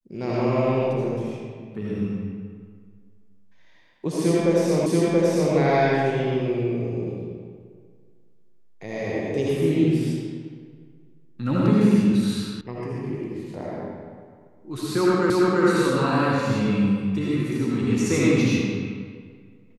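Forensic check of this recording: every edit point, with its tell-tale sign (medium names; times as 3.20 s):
4.86 s: repeat of the last 0.68 s
12.61 s: sound stops dead
15.30 s: repeat of the last 0.34 s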